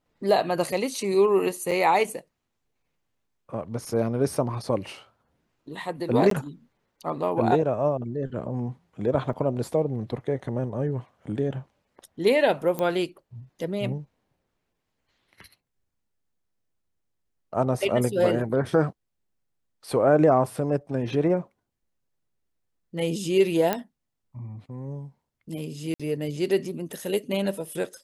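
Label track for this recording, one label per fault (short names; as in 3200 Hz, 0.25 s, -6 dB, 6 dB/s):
1.710000	1.720000	gap 6.1 ms
6.300000	6.310000	gap 13 ms
9.330000	9.330000	gap 3.7 ms
12.790000	12.790000	pop -15 dBFS
23.730000	23.730000	pop -10 dBFS
25.940000	26.000000	gap 56 ms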